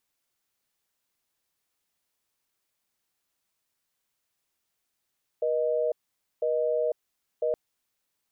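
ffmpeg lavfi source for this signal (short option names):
-f lavfi -i "aevalsrc='0.0501*(sin(2*PI*480*t)+sin(2*PI*620*t))*clip(min(mod(t,1),0.5-mod(t,1))/0.005,0,1)':d=2.12:s=44100"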